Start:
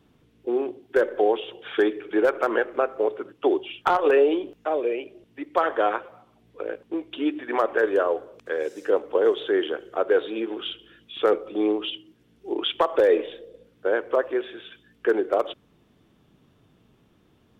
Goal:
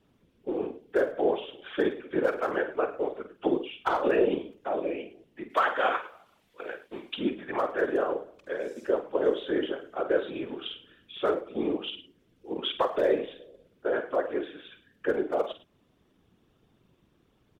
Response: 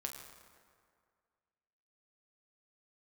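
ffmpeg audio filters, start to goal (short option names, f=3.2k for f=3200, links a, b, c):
-filter_complex "[0:a]asettb=1/sr,asplit=3[a][b][c];[a]atrim=end=5.504[d];[b]atrim=start=5.5:end=7.18,asetpts=PTS-STARTPTS,afade=t=in:d=0.004:c=qsin,afade=t=out:st=1.676:d=0.004:c=qsin,tiltshelf=f=680:g=-9.5[e];[c]atrim=start=7.176[f];[d][e]acrossfade=d=0.004:c1=hsin:c2=qsin[g];[g][f]acrossfade=d=0.004:c1=qsin:c2=hsin,aecho=1:1:48|106:0.335|0.158,afftfilt=real='hypot(re,im)*cos(2*PI*random(0))':imag='hypot(re,im)*sin(2*PI*random(1))':win_size=512:overlap=0.75"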